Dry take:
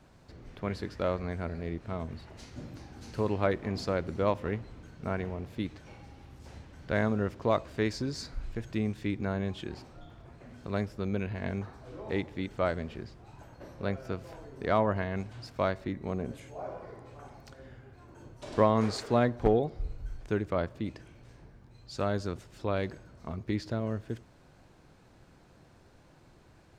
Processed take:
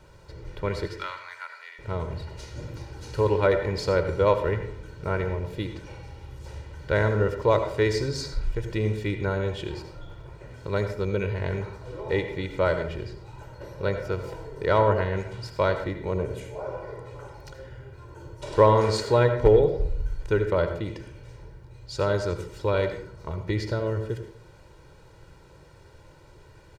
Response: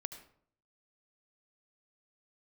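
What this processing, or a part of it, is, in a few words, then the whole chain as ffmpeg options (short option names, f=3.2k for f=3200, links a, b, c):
microphone above a desk: -filter_complex "[0:a]asettb=1/sr,asplit=3[a][b][c];[a]atrim=end=0.874[d];[b]atrim=start=0.87:end=1.79,asetpts=PTS-STARTPTS,afade=t=in:d=0.004:c=qsin,afade=t=out:st=0.916:d=0.004:c=qsin,highpass=f=1.1k:w=0.5412,highpass=f=1.1k:w=1.3066[e];[c]atrim=start=1.786[f];[d][e]acrossfade=d=0.004:c1=hsin:c2=qsin[g];[g][f]acrossfade=d=0.004:c1=qsin:c2=hsin,aecho=1:1:2.1:0.75[h];[1:a]atrim=start_sample=2205[i];[h][i]afir=irnorm=-1:irlink=0,volume=7dB"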